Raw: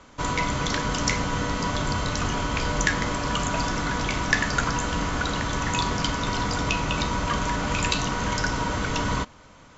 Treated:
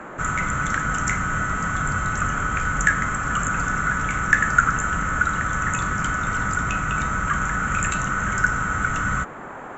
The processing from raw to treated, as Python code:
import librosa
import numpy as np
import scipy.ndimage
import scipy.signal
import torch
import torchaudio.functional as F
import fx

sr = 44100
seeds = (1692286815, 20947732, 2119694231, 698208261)

y = fx.curve_eq(x, sr, hz=(190.0, 830.0, 1300.0, 4900.0, 7800.0), db=(0, -28, 12, -22, 9))
y = fx.dmg_noise_band(y, sr, seeds[0], low_hz=140.0, high_hz=1500.0, level_db=-38.0)
y = y * librosa.db_to_amplitude(1.0)